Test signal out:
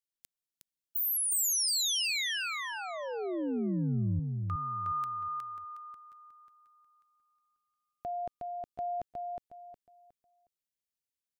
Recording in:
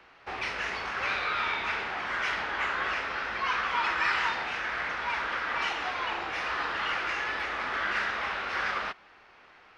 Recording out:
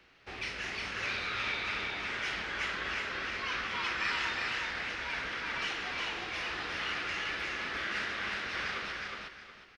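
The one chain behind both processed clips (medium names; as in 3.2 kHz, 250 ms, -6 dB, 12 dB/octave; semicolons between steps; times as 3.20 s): peaking EQ 930 Hz -12.5 dB 1.9 oct; on a send: feedback delay 363 ms, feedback 28%, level -3 dB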